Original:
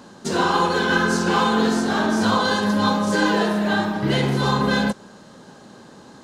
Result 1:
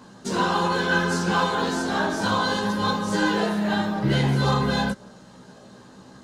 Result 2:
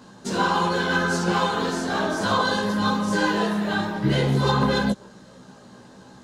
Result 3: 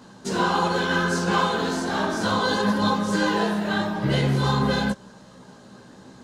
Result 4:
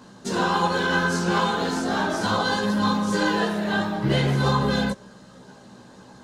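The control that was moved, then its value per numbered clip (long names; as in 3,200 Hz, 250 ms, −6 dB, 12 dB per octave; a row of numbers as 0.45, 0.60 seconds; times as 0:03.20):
multi-voice chorus, speed: 0.46, 1.8, 3.1, 0.97 Hertz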